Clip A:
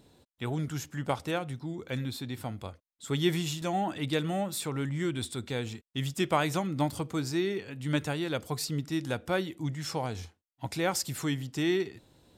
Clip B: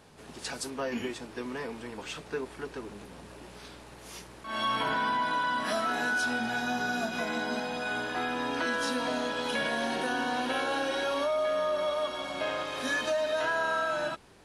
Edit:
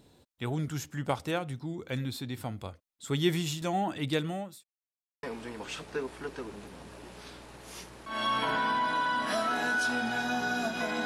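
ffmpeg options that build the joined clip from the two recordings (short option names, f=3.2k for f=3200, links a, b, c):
-filter_complex "[0:a]apad=whole_dur=11.05,atrim=end=11.05,asplit=2[a][b];[a]atrim=end=4.64,asetpts=PTS-STARTPTS,afade=t=out:st=4.16:d=0.48[c];[b]atrim=start=4.64:end=5.23,asetpts=PTS-STARTPTS,volume=0[d];[1:a]atrim=start=1.61:end=7.43,asetpts=PTS-STARTPTS,afade=t=in:d=0.004:c=hsin[e];[c][d][e]concat=n=3:v=0:a=1"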